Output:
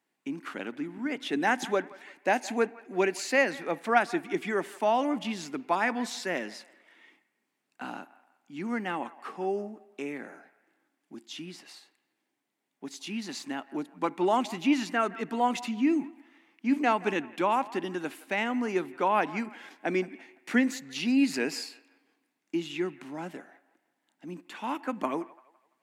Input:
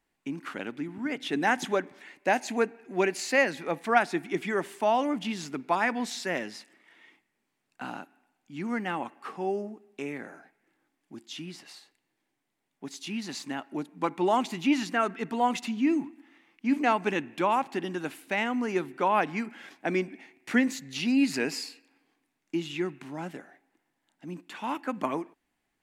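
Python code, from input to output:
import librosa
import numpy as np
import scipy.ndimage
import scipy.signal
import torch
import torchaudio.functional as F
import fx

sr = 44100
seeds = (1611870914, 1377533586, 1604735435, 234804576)

y = scipy.signal.sosfilt(scipy.signal.cheby1(2, 1.0, 220.0, 'highpass', fs=sr, output='sos'), x)
y = fx.echo_wet_bandpass(y, sr, ms=169, feedback_pct=37, hz=1200.0, wet_db=-18.0)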